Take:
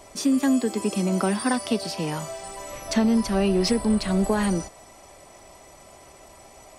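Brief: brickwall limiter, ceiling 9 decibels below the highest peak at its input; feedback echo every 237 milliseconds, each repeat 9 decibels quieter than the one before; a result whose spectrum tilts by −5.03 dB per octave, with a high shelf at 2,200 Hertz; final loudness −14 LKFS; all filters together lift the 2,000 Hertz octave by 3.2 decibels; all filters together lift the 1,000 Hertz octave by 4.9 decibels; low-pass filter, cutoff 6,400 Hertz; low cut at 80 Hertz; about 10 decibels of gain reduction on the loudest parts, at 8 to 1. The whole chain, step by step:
high-pass filter 80 Hz
low-pass filter 6,400 Hz
parametric band 1,000 Hz +6 dB
parametric band 2,000 Hz +3.5 dB
high-shelf EQ 2,200 Hz −3 dB
downward compressor 8 to 1, threshold −27 dBFS
brickwall limiter −27 dBFS
repeating echo 237 ms, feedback 35%, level −9 dB
level +22 dB

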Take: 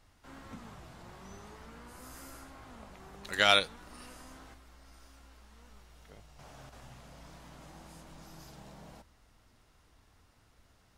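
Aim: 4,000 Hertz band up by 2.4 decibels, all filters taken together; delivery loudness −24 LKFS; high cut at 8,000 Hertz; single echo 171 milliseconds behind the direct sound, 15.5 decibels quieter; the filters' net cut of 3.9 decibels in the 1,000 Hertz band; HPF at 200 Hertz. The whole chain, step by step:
high-pass filter 200 Hz
low-pass filter 8,000 Hz
parametric band 1,000 Hz −7 dB
parametric band 4,000 Hz +3.5 dB
single-tap delay 171 ms −15.5 dB
level +2.5 dB

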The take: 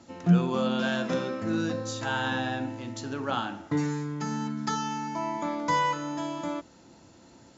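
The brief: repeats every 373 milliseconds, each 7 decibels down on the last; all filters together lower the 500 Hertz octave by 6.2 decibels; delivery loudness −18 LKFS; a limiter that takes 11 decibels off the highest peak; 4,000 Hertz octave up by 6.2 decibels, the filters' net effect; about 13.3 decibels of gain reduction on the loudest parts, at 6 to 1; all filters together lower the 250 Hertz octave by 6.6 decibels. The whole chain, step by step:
parametric band 250 Hz −8.5 dB
parametric band 500 Hz −5.5 dB
parametric band 4,000 Hz +8 dB
downward compressor 6 to 1, threshold −34 dBFS
brickwall limiter −32.5 dBFS
repeating echo 373 ms, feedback 45%, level −7 dB
level +22.5 dB

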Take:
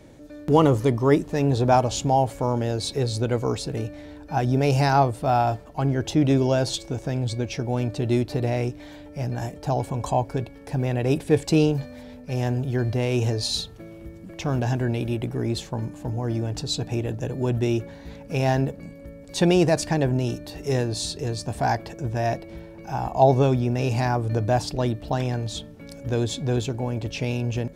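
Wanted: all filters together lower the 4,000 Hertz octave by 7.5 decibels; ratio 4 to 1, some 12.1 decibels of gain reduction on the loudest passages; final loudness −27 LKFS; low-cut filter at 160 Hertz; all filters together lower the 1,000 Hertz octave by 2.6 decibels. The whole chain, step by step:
high-pass filter 160 Hz
parametric band 1,000 Hz −3.5 dB
parametric band 4,000 Hz −9 dB
downward compressor 4 to 1, threshold −28 dBFS
level +6.5 dB

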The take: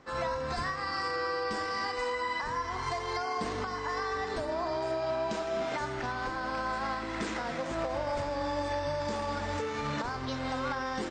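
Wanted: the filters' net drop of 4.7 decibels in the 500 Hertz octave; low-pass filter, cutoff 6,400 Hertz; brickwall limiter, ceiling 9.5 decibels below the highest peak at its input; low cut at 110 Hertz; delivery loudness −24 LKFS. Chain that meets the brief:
high-pass filter 110 Hz
low-pass filter 6,400 Hz
parametric band 500 Hz −6 dB
level +16 dB
brickwall limiter −16 dBFS

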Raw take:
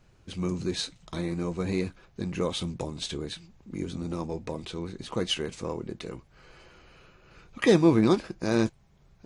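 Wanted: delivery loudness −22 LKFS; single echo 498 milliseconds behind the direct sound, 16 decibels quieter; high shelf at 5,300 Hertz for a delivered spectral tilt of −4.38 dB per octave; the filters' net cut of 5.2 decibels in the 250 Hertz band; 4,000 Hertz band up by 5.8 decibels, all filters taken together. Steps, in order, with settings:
parametric band 250 Hz −8 dB
parametric band 4,000 Hz +8.5 dB
high-shelf EQ 5,300 Hz −3 dB
single-tap delay 498 ms −16 dB
level +8.5 dB

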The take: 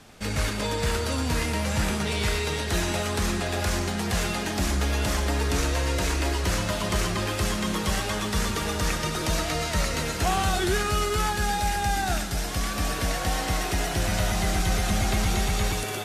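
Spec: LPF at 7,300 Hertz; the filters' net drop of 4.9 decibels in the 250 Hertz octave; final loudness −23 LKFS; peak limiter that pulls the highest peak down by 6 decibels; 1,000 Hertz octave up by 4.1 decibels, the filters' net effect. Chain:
low-pass filter 7,300 Hz
parametric band 250 Hz −7.5 dB
parametric band 1,000 Hz +6 dB
level +4.5 dB
brickwall limiter −13 dBFS

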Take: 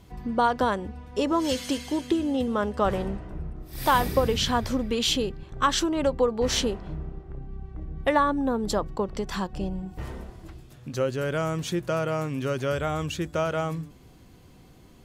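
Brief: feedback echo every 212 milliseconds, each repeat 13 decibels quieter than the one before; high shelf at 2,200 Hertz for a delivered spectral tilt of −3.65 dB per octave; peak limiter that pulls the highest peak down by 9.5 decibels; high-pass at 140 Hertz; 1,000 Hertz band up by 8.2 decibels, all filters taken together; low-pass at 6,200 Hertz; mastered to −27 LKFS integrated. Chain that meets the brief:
high-pass filter 140 Hz
low-pass filter 6,200 Hz
parametric band 1,000 Hz +8 dB
high-shelf EQ 2,200 Hz +8 dB
brickwall limiter −11.5 dBFS
repeating echo 212 ms, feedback 22%, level −13 dB
level −2.5 dB

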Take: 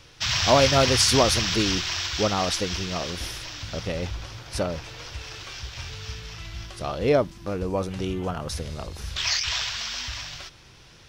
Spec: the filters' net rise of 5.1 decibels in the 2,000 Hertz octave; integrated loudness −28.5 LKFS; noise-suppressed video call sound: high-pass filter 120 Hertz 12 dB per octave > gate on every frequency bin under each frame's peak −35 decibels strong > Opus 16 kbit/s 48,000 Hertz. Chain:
high-pass filter 120 Hz 12 dB per octave
parametric band 2,000 Hz +6.5 dB
gate on every frequency bin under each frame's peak −35 dB strong
level −5.5 dB
Opus 16 kbit/s 48,000 Hz

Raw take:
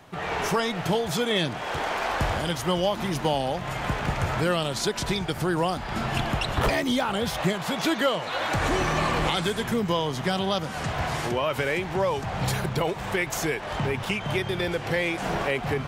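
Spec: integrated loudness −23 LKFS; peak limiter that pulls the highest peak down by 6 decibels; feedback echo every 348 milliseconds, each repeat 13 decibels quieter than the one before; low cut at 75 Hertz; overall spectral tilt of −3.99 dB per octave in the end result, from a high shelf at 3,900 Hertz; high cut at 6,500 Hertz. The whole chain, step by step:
high-pass filter 75 Hz
low-pass filter 6,500 Hz
high-shelf EQ 3,900 Hz +9 dB
brickwall limiter −16.5 dBFS
repeating echo 348 ms, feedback 22%, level −13 dB
level +3.5 dB

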